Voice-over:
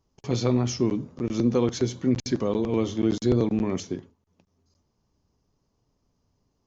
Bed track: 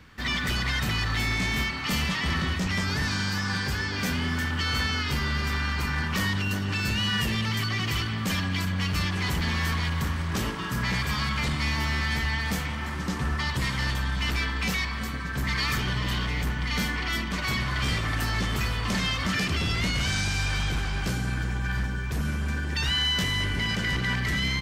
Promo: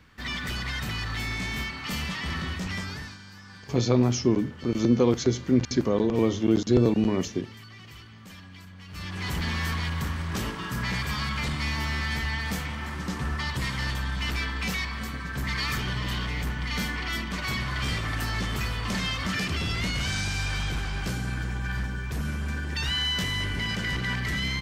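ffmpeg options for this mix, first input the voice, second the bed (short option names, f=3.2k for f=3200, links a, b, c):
-filter_complex "[0:a]adelay=3450,volume=1.5dB[a];[1:a]volume=12dB,afade=t=out:st=2.73:d=0.45:silence=0.199526,afade=t=in:st=8.87:d=0.51:silence=0.149624[b];[a][b]amix=inputs=2:normalize=0"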